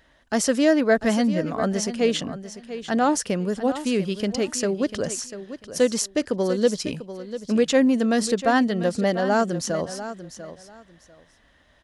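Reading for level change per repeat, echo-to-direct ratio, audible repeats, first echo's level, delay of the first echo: −14.0 dB, −12.5 dB, 2, −12.5 dB, 694 ms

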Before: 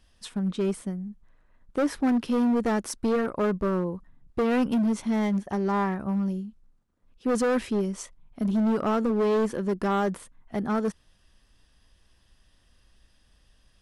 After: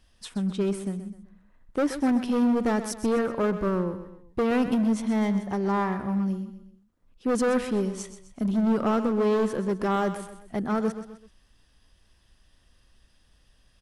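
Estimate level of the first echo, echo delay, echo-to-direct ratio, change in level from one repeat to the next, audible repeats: −11.5 dB, 128 ms, −10.5 dB, −7.5 dB, 3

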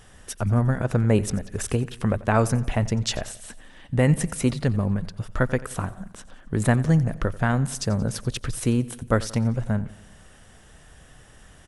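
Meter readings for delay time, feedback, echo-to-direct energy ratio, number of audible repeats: 89 ms, 55%, −17.5 dB, 4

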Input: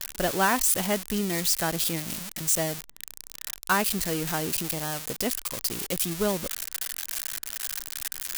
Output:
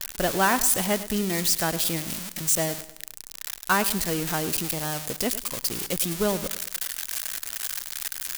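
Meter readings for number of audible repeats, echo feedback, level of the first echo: 3, 42%, −15.0 dB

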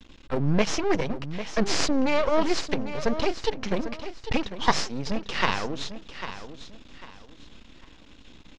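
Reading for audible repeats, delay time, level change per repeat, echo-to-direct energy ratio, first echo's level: 3, 798 ms, −10.5 dB, −11.0 dB, −11.5 dB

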